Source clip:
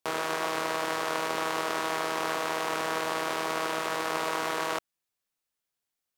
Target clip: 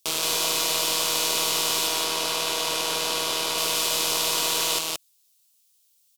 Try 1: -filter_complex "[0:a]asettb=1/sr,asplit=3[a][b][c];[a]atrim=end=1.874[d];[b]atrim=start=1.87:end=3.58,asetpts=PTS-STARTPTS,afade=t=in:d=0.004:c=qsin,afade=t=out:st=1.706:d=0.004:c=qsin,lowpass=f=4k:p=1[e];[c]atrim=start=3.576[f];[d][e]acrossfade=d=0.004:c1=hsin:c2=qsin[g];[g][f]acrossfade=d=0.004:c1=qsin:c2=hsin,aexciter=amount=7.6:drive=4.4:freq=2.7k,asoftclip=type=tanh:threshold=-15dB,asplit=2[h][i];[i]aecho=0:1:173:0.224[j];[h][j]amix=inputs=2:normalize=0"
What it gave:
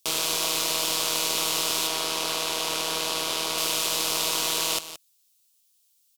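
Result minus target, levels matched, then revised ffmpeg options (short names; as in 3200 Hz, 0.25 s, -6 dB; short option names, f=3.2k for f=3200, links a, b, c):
echo-to-direct -10.5 dB
-filter_complex "[0:a]asettb=1/sr,asplit=3[a][b][c];[a]atrim=end=1.874[d];[b]atrim=start=1.87:end=3.58,asetpts=PTS-STARTPTS,afade=t=in:d=0.004:c=qsin,afade=t=out:st=1.706:d=0.004:c=qsin,lowpass=f=4k:p=1[e];[c]atrim=start=3.576[f];[d][e]acrossfade=d=0.004:c1=hsin:c2=qsin[g];[g][f]acrossfade=d=0.004:c1=qsin:c2=hsin,aexciter=amount=7.6:drive=4.4:freq=2.7k,asoftclip=type=tanh:threshold=-15dB,asplit=2[h][i];[i]aecho=0:1:173:0.75[j];[h][j]amix=inputs=2:normalize=0"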